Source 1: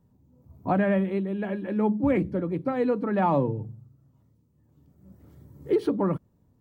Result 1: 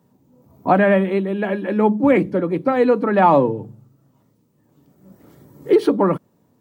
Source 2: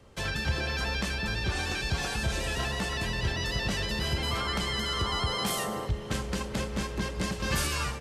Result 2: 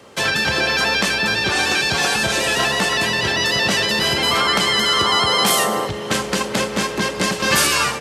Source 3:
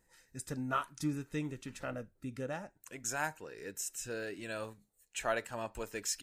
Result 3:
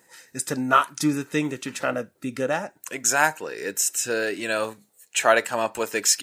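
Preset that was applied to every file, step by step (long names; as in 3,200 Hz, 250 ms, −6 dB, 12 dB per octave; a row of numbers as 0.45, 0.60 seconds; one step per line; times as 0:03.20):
high-pass filter 140 Hz 12 dB per octave
low-shelf EQ 210 Hz −9.5 dB
normalise the peak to −3 dBFS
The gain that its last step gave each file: +11.5, +15.0, +16.5 decibels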